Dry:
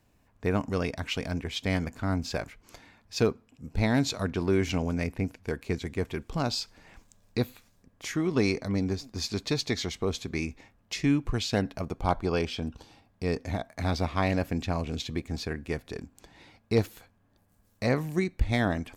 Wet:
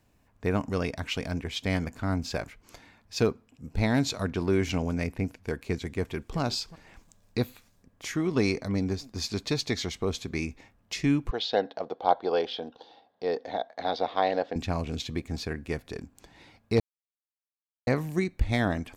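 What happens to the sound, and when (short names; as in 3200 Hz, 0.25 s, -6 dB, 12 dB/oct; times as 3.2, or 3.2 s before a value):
5.97–6.39 echo throw 0.36 s, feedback 10%, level -17.5 dB
11.31–14.56 speaker cabinet 380–4500 Hz, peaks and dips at 490 Hz +8 dB, 760 Hz +8 dB, 1200 Hz -4 dB, 2400 Hz -10 dB, 3600 Hz +7 dB
16.8–17.87 mute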